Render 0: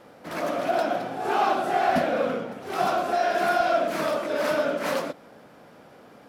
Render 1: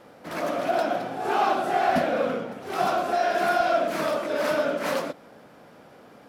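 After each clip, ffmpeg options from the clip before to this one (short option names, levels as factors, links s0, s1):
-af anull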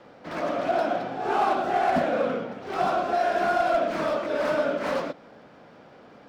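-filter_complex "[0:a]acrossover=split=290|1600|6400[s0][s1][s2][s3];[s2]asoftclip=type=tanh:threshold=0.015[s4];[s3]acrusher=samples=35:mix=1:aa=0.000001[s5];[s0][s1][s4][s5]amix=inputs=4:normalize=0,asoftclip=type=hard:threshold=0.158"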